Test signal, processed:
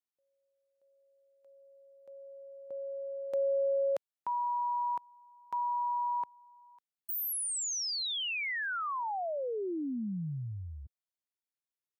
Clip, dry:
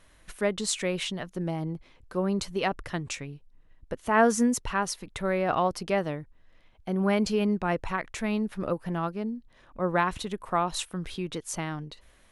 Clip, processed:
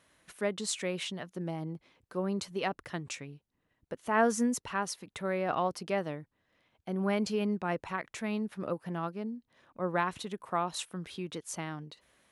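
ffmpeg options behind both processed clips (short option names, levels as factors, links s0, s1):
-af "highpass=120,volume=0.562"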